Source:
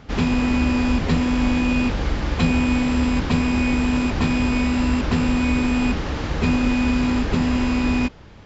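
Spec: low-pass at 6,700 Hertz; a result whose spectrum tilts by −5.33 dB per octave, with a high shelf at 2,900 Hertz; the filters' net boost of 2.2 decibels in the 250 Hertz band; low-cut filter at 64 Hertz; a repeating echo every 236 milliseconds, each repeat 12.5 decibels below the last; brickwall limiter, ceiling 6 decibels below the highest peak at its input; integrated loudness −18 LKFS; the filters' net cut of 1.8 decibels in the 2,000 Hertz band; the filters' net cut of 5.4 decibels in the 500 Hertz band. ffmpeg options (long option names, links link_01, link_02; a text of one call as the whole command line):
ffmpeg -i in.wav -af "highpass=64,lowpass=6700,equalizer=frequency=250:width_type=o:gain=4,equalizer=frequency=500:width_type=o:gain=-8.5,equalizer=frequency=2000:width_type=o:gain=-4,highshelf=frequency=2900:gain=4,alimiter=limit=-12.5dB:level=0:latency=1,aecho=1:1:236|472|708:0.237|0.0569|0.0137,volume=3.5dB" out.wav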